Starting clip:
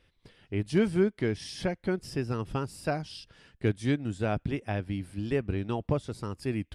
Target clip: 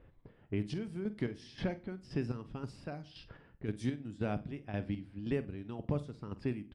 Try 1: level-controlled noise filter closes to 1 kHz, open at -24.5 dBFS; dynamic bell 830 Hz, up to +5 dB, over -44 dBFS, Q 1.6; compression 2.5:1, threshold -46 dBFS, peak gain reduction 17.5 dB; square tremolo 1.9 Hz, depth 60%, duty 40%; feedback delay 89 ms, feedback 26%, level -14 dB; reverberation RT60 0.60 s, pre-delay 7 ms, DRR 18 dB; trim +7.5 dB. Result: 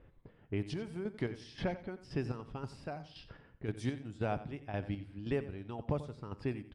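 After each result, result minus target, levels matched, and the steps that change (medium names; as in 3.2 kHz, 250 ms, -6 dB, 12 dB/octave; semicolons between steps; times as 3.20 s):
echo 41 ms late; 1 kHz band +4.5 dB
change: feedback delay 48 ms, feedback 26%, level -14 dB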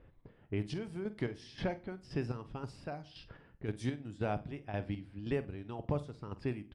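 1 kHz band +4.5 dB
change: dynamic bell 220 Hz, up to +5 dB, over -44 dBFS, Q 1.6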